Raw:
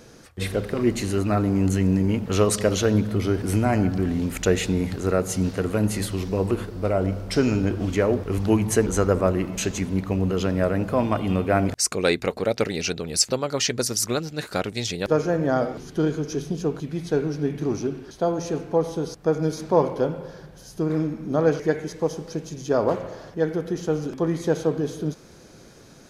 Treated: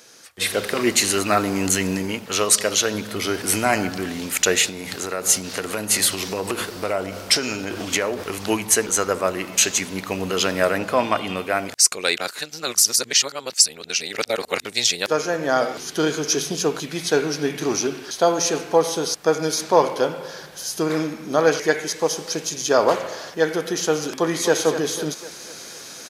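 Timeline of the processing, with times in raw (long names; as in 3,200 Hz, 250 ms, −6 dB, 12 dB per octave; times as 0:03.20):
0:04.61–0:08.47: downward compressor, threshold −23 dBFS
0:10.78–0:11.37: high-shelf EQ 7,900 Hz −9.5 dB
0:12.17–0:14.65: reverse
0:24.09–0:24.54: delay throw 250 ms, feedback 50%, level −9.5 dB
whole clip: high-pass filter 800 Hz 6 dB per octave; high-shelf EQ 2,100 Hz +8.5 dB; automatic gain control; level −1 dB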